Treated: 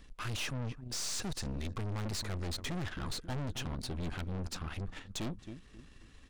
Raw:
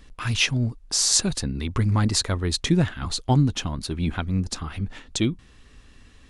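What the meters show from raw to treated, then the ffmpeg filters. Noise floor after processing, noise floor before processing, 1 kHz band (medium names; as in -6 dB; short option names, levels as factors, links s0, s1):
-57 dBFS, -52 dBFS, -12.5 dB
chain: -filter_complex "[0:a]asplit=2[s0][s1];[s1]adelay=268,lowpass=f=1500:p=1,volume=0.126,asplit=2[s2][s3];[s3]adelay=268,lowpass=f=1500:p=1,volume=0.36,asplit=2[s4][s5];[s5]adelay=268,lowpass=f=1500:p=1,volume=0.36[s6];[s0][s2][s4][s6]amix=inputs=4:normalize=0,aeval=exprs='(tanh(44.7*val(0)+0.7)-tanh(0.7))/44.7':c=same,acrossover=split=9500[s7][s8];[s8]acompressor=threshold=0.00355:ratio=4:attack=1:release=60[s9];[s7][s9]amix=inputs=2:normalize=0,volume=0.75"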